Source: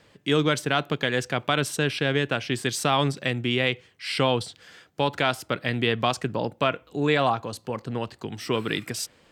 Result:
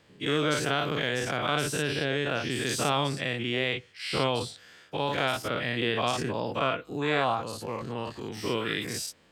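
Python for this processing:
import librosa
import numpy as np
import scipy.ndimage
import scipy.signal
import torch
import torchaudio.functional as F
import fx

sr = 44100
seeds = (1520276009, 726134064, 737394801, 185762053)

y = fx.spec_dilate(x, sr, span_ms=120)
y = y * librosa.db_to_amplitude(-8.5)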